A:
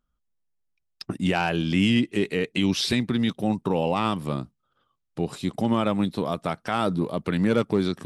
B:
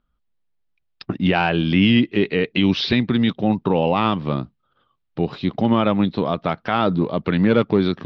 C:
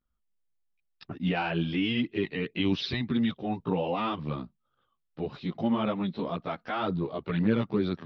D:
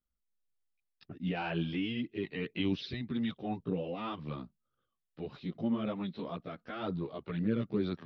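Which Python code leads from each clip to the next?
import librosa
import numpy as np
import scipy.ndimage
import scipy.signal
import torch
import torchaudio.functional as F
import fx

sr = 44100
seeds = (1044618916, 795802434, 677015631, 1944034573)

y1 = scipy.signal.sosfilt(scipy.signal.cheby2(4, 40, 7800.0, 'lowpass', fs=sr, output='sos'), x)
y1 = y1 * 10.0 ** (5.5 / 20.0)
y2 = fx.chorus_voices(y1, sr, voices=2, hz=0.94, base_ms=15, depth_ms=3.0, mix_pct=65)
y2 = y2 * 10.0 ** (-8.0 / 20.0)
y3 = fx.rotary(y2, sr, hz=1.1)
y3 = y3 * 10.0 ** (-4.5 / 20.0)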